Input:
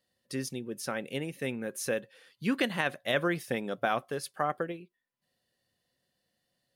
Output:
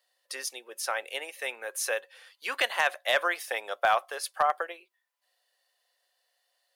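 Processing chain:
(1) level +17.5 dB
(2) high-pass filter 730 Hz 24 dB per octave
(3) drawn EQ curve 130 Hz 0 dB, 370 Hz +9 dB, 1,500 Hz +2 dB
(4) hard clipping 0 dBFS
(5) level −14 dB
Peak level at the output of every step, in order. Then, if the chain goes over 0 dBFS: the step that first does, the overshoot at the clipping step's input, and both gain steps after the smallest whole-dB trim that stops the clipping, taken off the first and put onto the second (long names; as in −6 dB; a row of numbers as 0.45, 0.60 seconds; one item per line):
+4.0, +3.0, +5.5, 0.0, −14.0 dBFS
step 1, 5.5 dB
step 1 +11.5 dB, step 5 −8 dB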